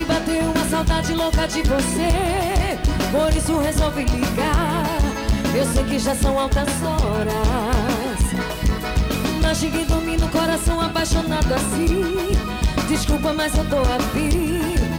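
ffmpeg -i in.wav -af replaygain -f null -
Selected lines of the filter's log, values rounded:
track_gain = +3.3 dB
track_peak = 0.196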